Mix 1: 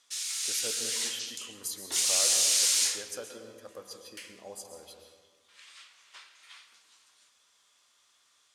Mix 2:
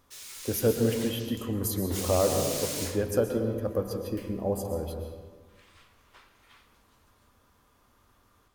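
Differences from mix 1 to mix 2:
speech +10.5 dB; master: remove frequency weighting ITU-R 468

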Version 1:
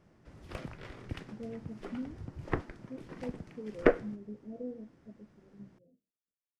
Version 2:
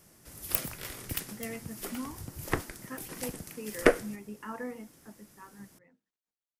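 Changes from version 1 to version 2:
speech: remove steep low-pass 660 Hz 72 dB/octave; master: remove tape spacing loss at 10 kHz 33 dB

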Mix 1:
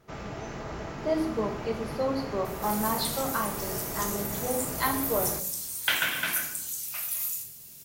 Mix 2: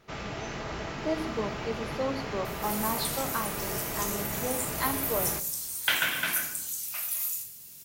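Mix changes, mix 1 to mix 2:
speech: send -7.5 dB; first sound: add peaking EQ 3.3 kHz +7.5 dB 2 oct

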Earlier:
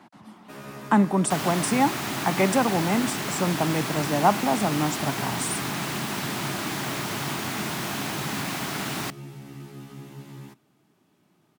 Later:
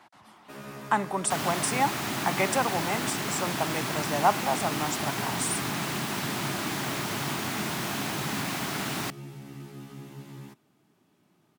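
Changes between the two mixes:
speech: add peaking EQ 210 Hz -14.5 dB 1.8 oct; reverb: off

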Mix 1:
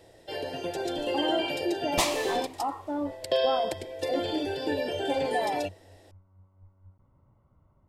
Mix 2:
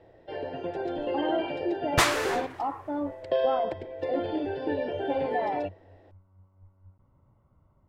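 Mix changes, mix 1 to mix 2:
first sound: add low-pass 1.8 kHz 12 dB/octave; second sound: remove static phaser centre 400 Hz, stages 6

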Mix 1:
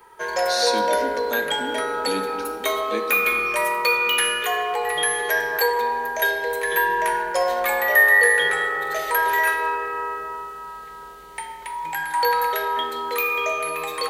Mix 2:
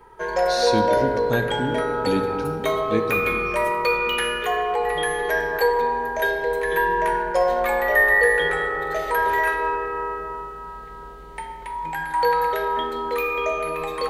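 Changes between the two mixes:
speech: remove rippled Chebyshev high-pass 190 Hz, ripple 3 dB; master: add tilt EQ -3 dB/octave

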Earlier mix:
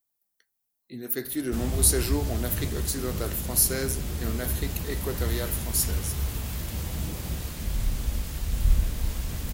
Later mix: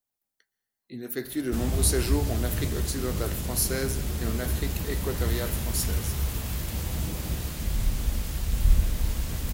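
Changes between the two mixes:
speech: add treble shelf 8.9 kHz -9.5 dB; reverb: on, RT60 1.8 s

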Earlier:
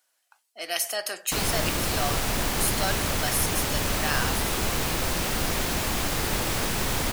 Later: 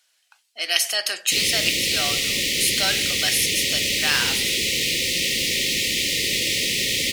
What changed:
background: add brick-wall FIR band-stop 590–1800 Hz; master: add frequency weighting D

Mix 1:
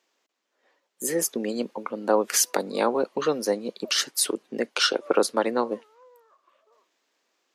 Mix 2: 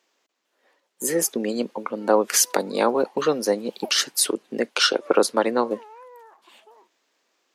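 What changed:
speech +3.0 dB; background: remove two resonant band-passes 820 Hz, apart 1 oct

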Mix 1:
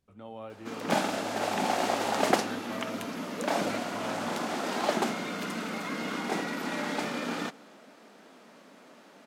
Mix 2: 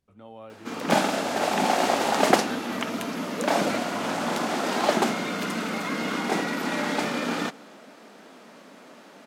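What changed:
speech: send off; background +5.5 dB

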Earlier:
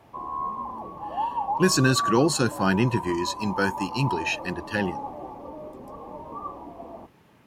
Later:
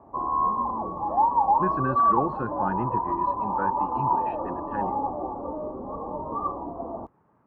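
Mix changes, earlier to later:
speech: add four-pole ladder low-pass 1.4 kHz, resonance 40%; background +6.5 dB

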